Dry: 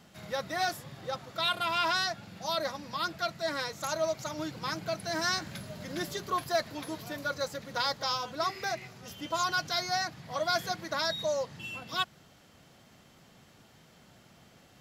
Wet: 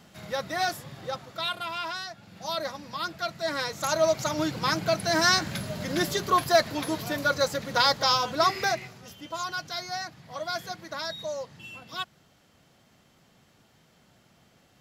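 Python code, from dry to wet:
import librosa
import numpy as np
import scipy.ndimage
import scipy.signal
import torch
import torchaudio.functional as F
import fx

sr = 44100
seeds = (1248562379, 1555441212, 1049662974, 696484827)

y = fx.gain(x, sr, db=fx.line((1.04, 3.0), (2.08, -7.0), (2.44, 0.5), (3.17, 0.5), (4.18, 8.5), (8.62, 8.5), (9.2, -3.0)))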